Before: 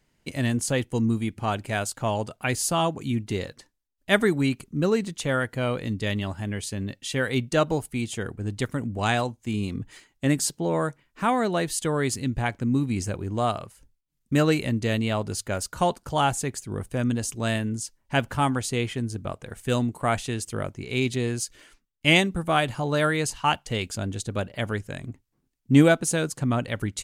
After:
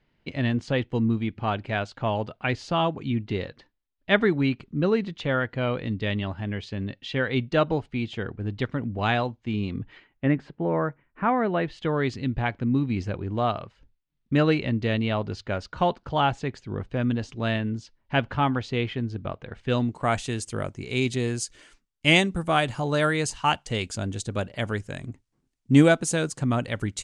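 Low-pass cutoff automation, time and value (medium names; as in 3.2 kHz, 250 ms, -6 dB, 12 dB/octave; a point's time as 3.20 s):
low-pass 24 dB/octave
9.72 s 4 kHz
10.41 s 2.2 kHz
11.31 s 2.2 kHz
12.03 s 4.1 kHz
19.68 s 4.1 kHz
20.24 s 9.2 kHz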